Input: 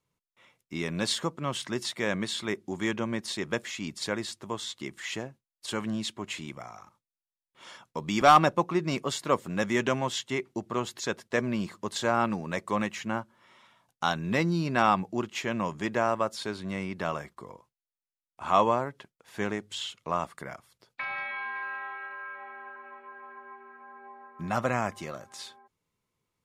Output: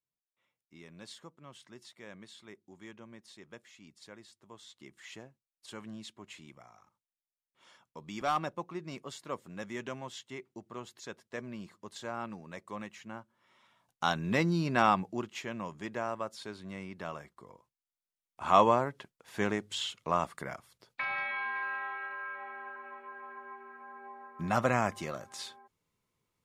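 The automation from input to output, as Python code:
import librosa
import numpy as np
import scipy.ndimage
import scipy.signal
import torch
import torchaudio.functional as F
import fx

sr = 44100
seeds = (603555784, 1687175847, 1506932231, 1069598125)

y = fx.gain(x, sr, db=fx.line((4.33, -20.0), (5.0, -13.0), (13.2, -13.0), (14.09, -2.0), (14.86, -2.0), (15.56, -9.0), (17.4, -9.0), (18.5, 0.0)))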